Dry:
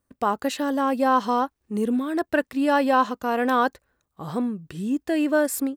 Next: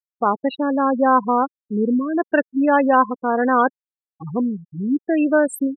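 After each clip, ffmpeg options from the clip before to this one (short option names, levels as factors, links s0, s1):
-af "afftfilt=real='re*gte(hypot(re,im),0.0891)':imag='im*gte(hypot(re,im),0.0891)':win_size=1024:overlap=0.75,volume=1.68"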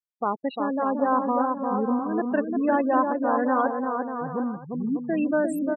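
-filter_complex "[0:a]acrossover=split=1500[s0][s1];[s0]aecho=1:1:350|595|766.5|886.6|970.6:0.631|0.398|0.251|0.158|0.1[s2];[s1]alimiter=level_in=1.58:limit=0.0631:level=0:latency=1,volume=0.631[s3];[s2][s3]amix=inputs=2:normalize=0,volume=0.447"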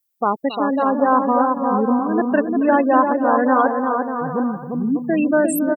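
-af "aemphasis=mode=production:type=50fm,aecho=1:1:275:0.178,volume=2.24"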